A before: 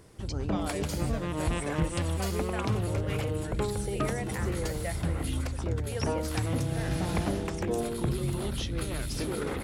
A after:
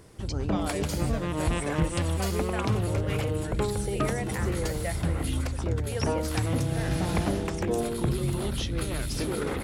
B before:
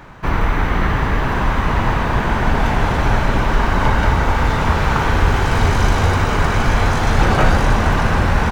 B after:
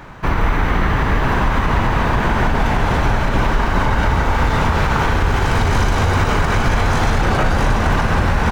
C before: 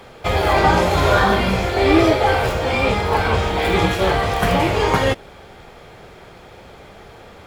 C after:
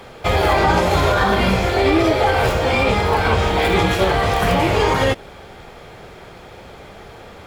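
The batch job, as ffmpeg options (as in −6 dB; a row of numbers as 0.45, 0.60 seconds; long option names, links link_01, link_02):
-af "alimiter=limit=-9dB:level=0:latency=1:release=79,volume=2.5dB"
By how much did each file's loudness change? +2.5, 0.0, +0.5 LU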